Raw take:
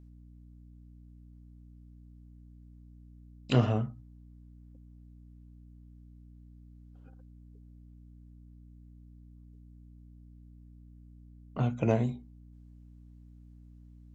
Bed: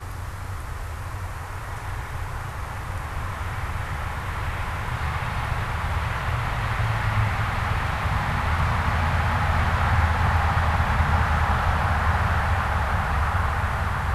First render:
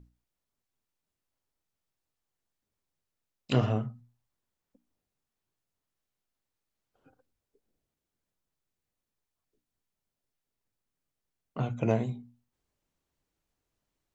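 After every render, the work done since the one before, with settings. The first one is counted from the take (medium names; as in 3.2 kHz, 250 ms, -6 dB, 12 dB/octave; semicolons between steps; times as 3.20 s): hum notches 60/120/180/240/300 Hz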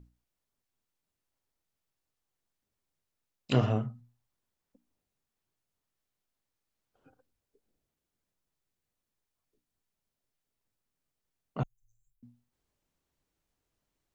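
11.63–12.23 s: inverse Chebyshev band-stop 170–2500 Hz, stop band 80 dB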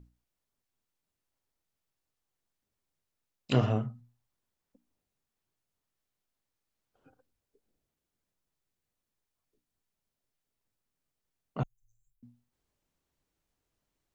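no audible change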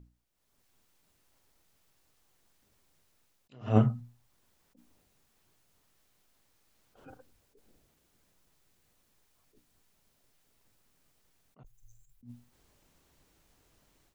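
level rider gain up to 15.5 dB; attacks held to a fixed rise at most 190 dB/s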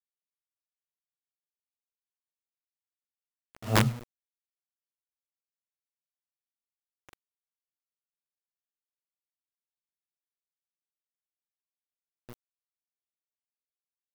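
integer overflow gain 14.5 dB; bit crusher 7-bit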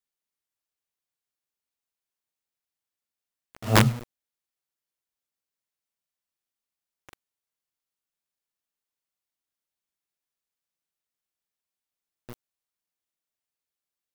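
trim +5 dB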